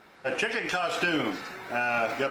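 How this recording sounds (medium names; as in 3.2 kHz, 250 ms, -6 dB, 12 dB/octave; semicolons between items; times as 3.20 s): tremolo triangle 1.1 Hz, depth 40%; Opus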